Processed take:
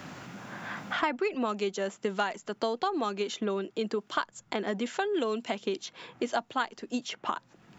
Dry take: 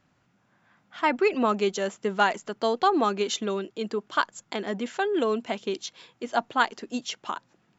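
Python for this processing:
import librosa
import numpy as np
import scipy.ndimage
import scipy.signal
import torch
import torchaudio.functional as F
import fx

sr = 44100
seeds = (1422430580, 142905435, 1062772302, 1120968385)

y = fx.band_squash(x, sr, depth_pct=100)
y = y * librosa.db_to_amplitude(-5.5)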